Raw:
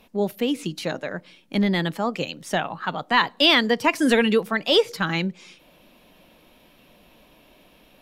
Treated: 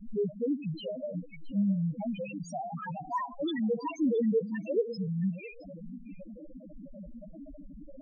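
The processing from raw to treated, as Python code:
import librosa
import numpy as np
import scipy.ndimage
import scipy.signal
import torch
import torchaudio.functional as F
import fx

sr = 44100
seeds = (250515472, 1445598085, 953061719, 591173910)

y = x + 0.5 * 10.0 ** (-21.0 / 20.0) * np.sign(x)
y = fx.leveller(y, sr, passes=1)
y = fx.spec_topn(y, sr, count=1)
y = y + 10.0 ** (-18.5 / 20.0) * np.pad(y, (int(669 * sr / 1000.0), 0))[:len(y)]
y = y * librosa.db_to_amplitude(-7.0)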